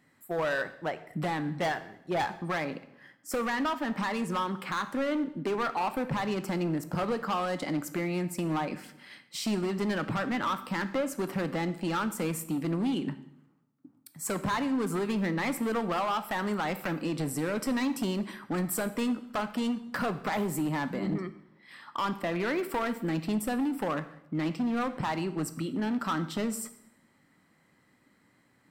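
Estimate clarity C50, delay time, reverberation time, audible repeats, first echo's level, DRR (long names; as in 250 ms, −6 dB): 14.0 dB, no echo audible, 0.75 s, no echo audible, no echo audible, 11.0 dB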